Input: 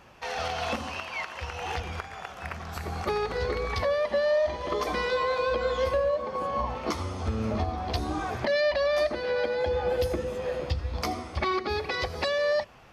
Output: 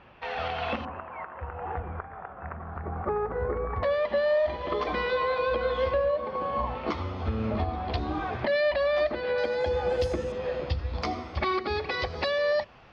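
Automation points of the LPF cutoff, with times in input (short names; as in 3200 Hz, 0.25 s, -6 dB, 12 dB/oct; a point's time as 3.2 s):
LPF 24 dB/oct
3500 Hz
from 0.85 s 1500 Hz
from 3.83 s 3900 Hz
from 9.38 s 8400 Hz
from 10.32 s 4900 Hz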